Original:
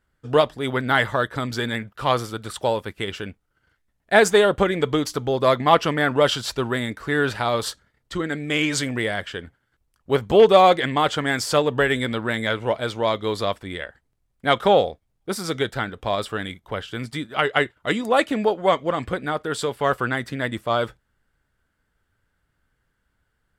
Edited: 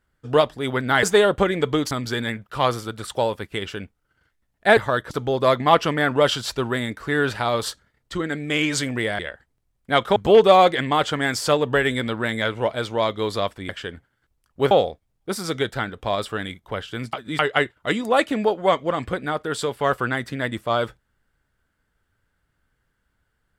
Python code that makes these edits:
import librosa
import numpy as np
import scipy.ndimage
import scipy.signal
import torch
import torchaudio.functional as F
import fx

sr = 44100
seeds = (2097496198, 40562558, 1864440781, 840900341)

y = fx.edit(x, sr, fx.swap(start_s=1.03, length_s=0.34, other_s=4.23, other_length_s=0.88),
    fx.swap(start_s=9.19, length_s=1.02, other_s=13.74, other_length_s=0.97),
    fx.reverse_span(start_s=17.13, length_s=0.26), tone=tone)